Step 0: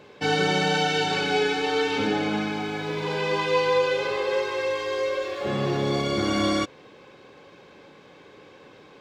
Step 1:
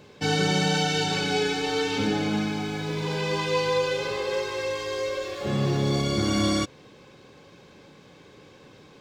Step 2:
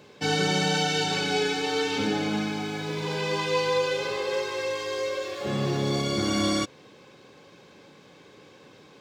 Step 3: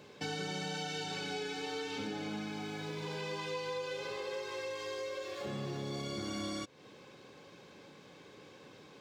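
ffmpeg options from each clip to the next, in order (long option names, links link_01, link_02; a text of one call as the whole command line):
ffmpeg -i in.wav -af "bass=frequency=250:gain=9,treble=frequency=4000:gain=9,volume=-3.5dB" out.wav
ffmpeg -i in.wav -af "highpass=frequency=170:poles=1" out.wav
ffmpeg -i in.wav -af "acompressor=threshold=-36dB:ratio=3,volume=-3.5dB" out.wav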